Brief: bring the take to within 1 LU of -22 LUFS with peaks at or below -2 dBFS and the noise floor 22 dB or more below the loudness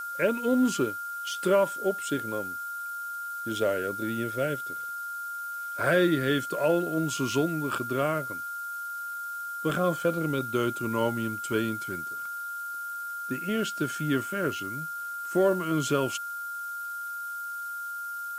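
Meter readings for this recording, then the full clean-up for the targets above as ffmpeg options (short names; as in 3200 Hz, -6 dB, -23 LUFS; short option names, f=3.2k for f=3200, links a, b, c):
steady tone 1400 Hz; tone level -33 dBFS; noise floor -36 dBFS; noise floor target -52 dBFS; loudness -29.5 LUFS; peak -12.5 dBFS; loudness target -22.0 LUFS
-> -af "bandreject=f=1.4k:w=30"
-af "afftdn=nr=16:nf=-36"
-af "volume=7.5dB"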